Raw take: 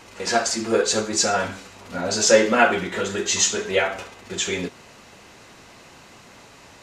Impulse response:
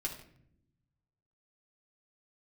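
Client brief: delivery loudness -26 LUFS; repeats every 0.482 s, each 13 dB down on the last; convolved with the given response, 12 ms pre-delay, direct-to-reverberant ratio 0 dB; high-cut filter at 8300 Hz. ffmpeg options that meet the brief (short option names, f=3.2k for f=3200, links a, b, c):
-filter_complex "[0:a]lowpass=8.3k,aecho=1:1:482|964|1446:0.224|0.0493|0.0108,asplit=2[a][b];[1:a]atrim=start_sample=2205,adelay=12[c];[b][c]afir=irnorm=-1:irlink=0,volume=-1dB[d];[a][d]amix=inputs=2:normalize=0,volume=-6.5dB"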